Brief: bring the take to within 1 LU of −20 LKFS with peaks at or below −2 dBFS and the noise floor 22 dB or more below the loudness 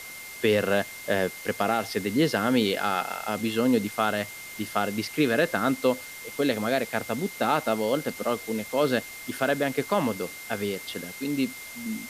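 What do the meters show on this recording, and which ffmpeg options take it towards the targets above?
interfering tone 2,100 Hz; level of the tone −41 dBFS; background noise floor −41 dBFS; target noise floor −49 dBFS; integrated loudness −27.0 LKFS; sample peak −10.0 dBFS; target loudness −20.0 LKFS
→ -af "bandreject=frequency=2100:width=30"
-af "afftdn=noise_reduction=8:noise_floor=-41"
-af "volume=7dB"

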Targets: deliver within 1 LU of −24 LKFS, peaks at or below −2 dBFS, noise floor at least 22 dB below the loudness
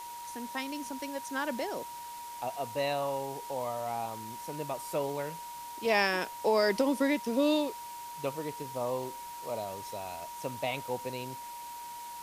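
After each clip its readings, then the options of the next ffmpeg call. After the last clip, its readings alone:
interfering tone 950 Hz; level of the tone −41 dBFS; background noise floor −43 dBFS; target noise floor −56 dBFS; integrated loudness −33.5 LKFS; sample peak −12.5 dBFS; target loudness −24.0 LKFS
→ -af "bandreject=frequency=950:width=30"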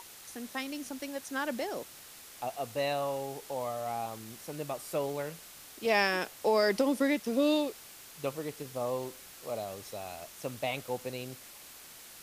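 interfering tone none found; background noise floor −51 dBFS; target noise floor −56 dBFS
→ -af "afftdn=noise_reduction=6:noise_floor=-51"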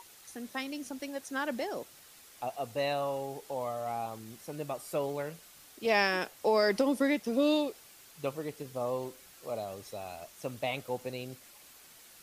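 background noise floor −56 dBFS; integrated loudness −33.5 LKFS; sample peak −13.0 dBFS; target loudness −24.0 LKFS
→ -af "volume=9.5dB"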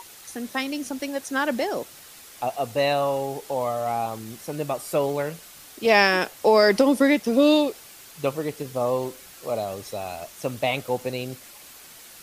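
integrated loudness −24.0 LKFS; sample peak −3.5 dBFS; background noise floor −46 dBFS

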